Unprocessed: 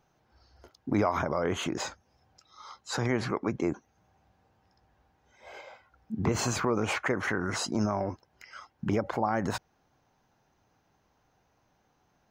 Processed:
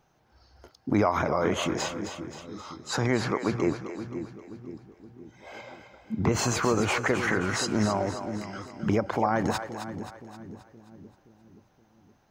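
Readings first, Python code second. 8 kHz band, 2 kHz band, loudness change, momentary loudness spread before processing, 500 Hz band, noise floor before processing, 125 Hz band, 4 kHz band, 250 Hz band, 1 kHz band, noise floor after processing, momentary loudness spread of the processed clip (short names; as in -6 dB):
+3.5 dB, +3.5 dB, +2.5 dB, 19 LU, +3.5 dB, -71 dBFS, +3.5 dB, +3.5 dB, +3.5 dB, +3.5 dB, -65 dBFS, 19 LU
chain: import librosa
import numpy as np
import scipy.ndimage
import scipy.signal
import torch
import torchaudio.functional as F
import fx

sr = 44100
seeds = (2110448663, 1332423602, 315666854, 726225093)

y = fx.comb_fb(x, sr, f0_hz=160.0, decay_s=1.9, harmonics='all', damping=0.0, mix_pct=30)
y = fx.echo_split(y, sr, split_hz=390.0, low_ms=522, high_ms=264, feedback_pct=52, wet_db=-9)
y = y * 10.0 ** (6.0 / 20.0)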